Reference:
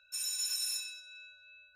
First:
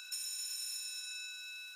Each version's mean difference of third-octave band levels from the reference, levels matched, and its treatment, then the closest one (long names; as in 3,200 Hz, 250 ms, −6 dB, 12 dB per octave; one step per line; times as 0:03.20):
8.0 dB: compressor on every frequency bin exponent 0.4
elliptic high-pass filter 830 Hz, stop band 60 dB
downward compressor, threshold −41 dBFS, peak gain reduction 11 dB
level +2 dB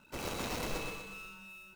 19.5 dB: running median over 25 samples
parametric band 810 Hz −2 dB 0.27 octaves
on a send: repeating echo 124 ms, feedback 40%, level −6.5 dB
on the sum: level +13.5 dB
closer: first